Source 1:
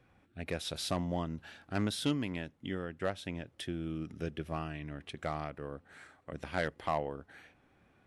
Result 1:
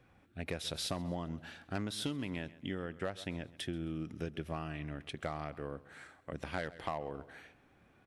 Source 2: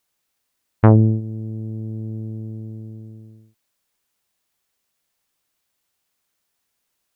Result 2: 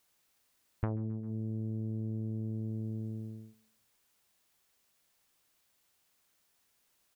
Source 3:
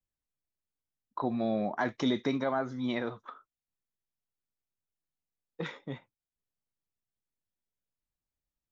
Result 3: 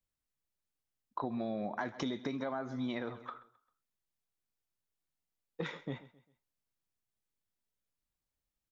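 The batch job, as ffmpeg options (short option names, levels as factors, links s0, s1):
-af "aecho=1:1:132|264|396:0.1|0.038|0.0144,acompressor=threshold=0.02:ratio=10,volume=1.12"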